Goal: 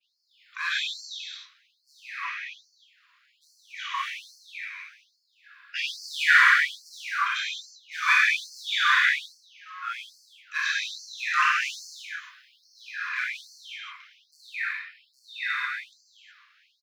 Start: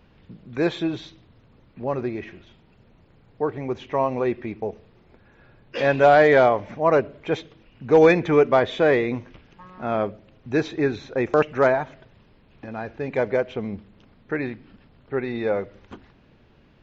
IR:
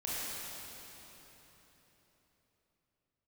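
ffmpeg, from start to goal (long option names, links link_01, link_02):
-filter_complex "[0:a]asettb=1/sr,asplit=3[link_01][link_02][link_03];[link_01]atrim=end=11.154[link_04];[link_02]atrim=start=11.15:end=12.92,asetpts=PTS-STARTPTS,afade=type=in:duration=0.004:curve=qsin,afade=type=out:start_time=1.766:duration=0.004:curve=qsin,highshelf=frequency=4000:gain=9[link_05];[link_03]atrim=start=12.916[link_06];[link_04][link_05]acrossfade=duration=0.004:curve1=hsin:curve2=qsin[link_07];[link_07][link_06]acrossfade=duration=0.004:curve1=qsin:curve2=hsin,asplit=4[link_08][link_09][link_10][link_11];[link_09]adelay=97,afreqshift=90,volume=-21dB[link_12];[link_10]adelay=194,afreqshift=180,volume=-30.1dB[link_13];[link_11]adelay=291,afreqshift=270,volume=-39.2dB[link_14];[link_08][link_12][link_13][link_14]amix=inputs=4:normalize=0,agate=range=-33dB:threshold=-50dB:ratio=3:detection=peak,asplit=2[link_15][link_16];[link_16]volume=22dB,asoftclip=hard,volume=-22dB,volume=-6dB[link_17];[link_15][link_17]amix=inputs=2:normalize=0[link_18];[1:a]atrim=start_sample=2205,afade=type=out:start_time=0.43:duration=0.01,atrim=end_sample=19404[link_19];[link_18][link_19]afir=irnorm=-1:irlink=0,afftfilt=real='re*gte(b*sr/1024,960*pow(4300/960,0.5+0.5*sin(2*PI*1.2*pts/sr)))':imag='im*gte(b*sr/1024,960*pow(4300/960,0.5+0.5*sin(2*PI*1.2*pts/sr)))':win_size=1024:overlap=0.75,volume=3.5dB"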